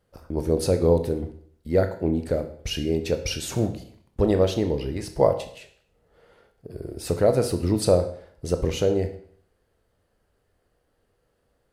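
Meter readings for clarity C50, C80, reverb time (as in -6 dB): 11.0 dB, 14.0 dB, 0.55 s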